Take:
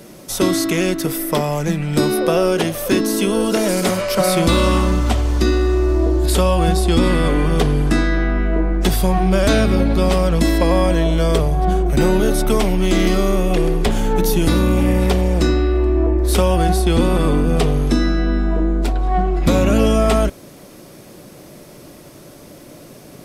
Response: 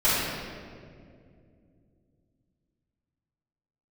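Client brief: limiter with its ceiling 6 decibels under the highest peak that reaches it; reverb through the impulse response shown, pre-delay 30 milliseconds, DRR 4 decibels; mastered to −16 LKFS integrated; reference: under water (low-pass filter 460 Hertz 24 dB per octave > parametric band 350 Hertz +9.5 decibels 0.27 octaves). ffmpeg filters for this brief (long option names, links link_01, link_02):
-filter_complex "[0:a]alimiter=limit=-10dB:level=0:latency=1,asplit=2[link_01][link_02];[1:a]atrim=start_sample=2205,adelay=30[link_03];[link_02][link_03]afir=irnorm=-1:irlink=0,volume=-21dB[link_04];[link_01][link_04]amix=inputs=2:normalize=0,lowpass=frequency=460:width=0.5412,lowpass=frequency=460:width=1.3066,equalizer=frequency=350:width_type=o:width=0.27:gain=9.5,volume=-1.5dB"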